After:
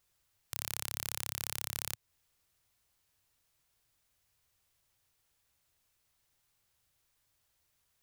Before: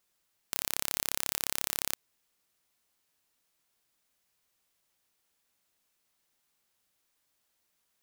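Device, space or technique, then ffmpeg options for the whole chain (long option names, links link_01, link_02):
car stereo with a boomy subwoofer: -af "lowshelf=frequency=150:width_type=q:width=1.5:gain=10,alimiter=limit=-8.5dB:level=0:latency=1:release=230"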